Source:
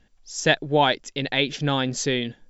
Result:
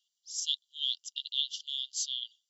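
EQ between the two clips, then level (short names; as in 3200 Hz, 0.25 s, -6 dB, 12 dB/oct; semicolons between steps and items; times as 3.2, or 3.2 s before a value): brick-wall FIR high-pass 2800 Hz; -4.0 dB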